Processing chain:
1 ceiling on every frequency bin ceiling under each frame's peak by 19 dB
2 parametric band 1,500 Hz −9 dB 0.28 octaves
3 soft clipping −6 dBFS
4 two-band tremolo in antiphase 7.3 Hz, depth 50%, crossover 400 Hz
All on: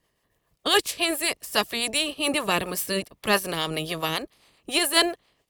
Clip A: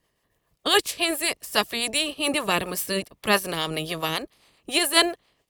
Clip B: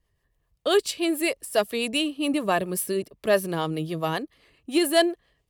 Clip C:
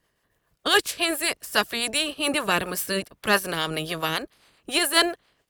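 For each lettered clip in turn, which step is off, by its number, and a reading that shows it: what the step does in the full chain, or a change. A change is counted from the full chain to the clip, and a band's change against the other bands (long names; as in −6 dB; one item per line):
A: 3, distortion level −21 dB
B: 1, 250 Hz band +7.0 dB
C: 2, 2 kHz band +2.5 dB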